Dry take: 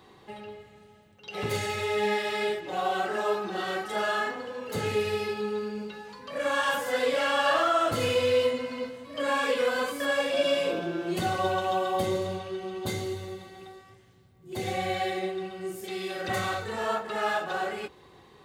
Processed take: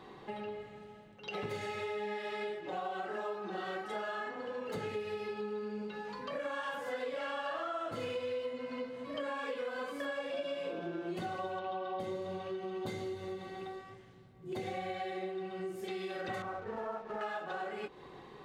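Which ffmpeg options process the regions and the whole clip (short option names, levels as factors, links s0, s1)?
-filter_complex "[0:a]asettb=1/sr,asplit=3[s0][s1][s2];[s0]atrim=end=11.594[s3];[s1]atrim=start=11.59:end=12,asetpts=PTS-STARTPTS,afade=t=in:d=0.004:c=qsin,afade=t=out:st=0.406:d=0.004:c=qsin,lowpass=f=5000:w=0.5412,lowpass=f=5000:w=1.3066,bandreject=f=1800:w=11[s4];[s2]atrim=start=11.996[s5];[s3][s4]acrossfade=d=0.004:c1=hsin:c2=qsin[s6];[s6][s5]acrossfade=d=0.004:c1=qsin:c2=hsin,asettb=1/sr,asplit=3[s7][s8][s9];[s7]atrim=end=16.424[s10];[s8]atrim=start=16.42:end=17.21,asetpts=PTS-STARTPTS,afade=t=in:d=0.004:c=qsin,afade=t=out:st=0.786:d=0.004:c=qsin,lowpass=1300,aeval=exprs='sgn(val(0))*max(abs(val(0))-0.00422,0)':c=same[s11];[s9]atrim=start=17.206[s12];[s10][s11]acrossfade=d=0.004:c1=hsin:c2=qsin[s13];[s13][s12]acrossfade=d=0.004:c1=qsin:c2=hsin,lowpass=f=2400:p=1,equalizer=f=82:t=o:w=0.49:g=-15,acompressor=threshold=0.00891:ratio=5,volume=1.5"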